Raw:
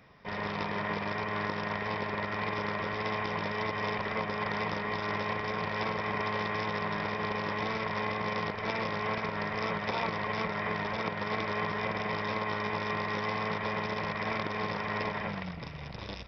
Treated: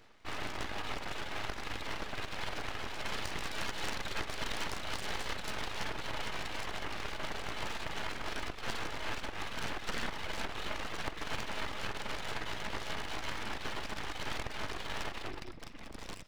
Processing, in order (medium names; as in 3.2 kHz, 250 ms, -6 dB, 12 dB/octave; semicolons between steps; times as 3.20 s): reverb removal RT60 1.4 s; 3.09–5.68 s: treble shelf 3.9 kHz +9.5 dB; reverberation RT60 0.55 s, pre-delay 48 ms, DRR 19.5 dB; full-wave rectifier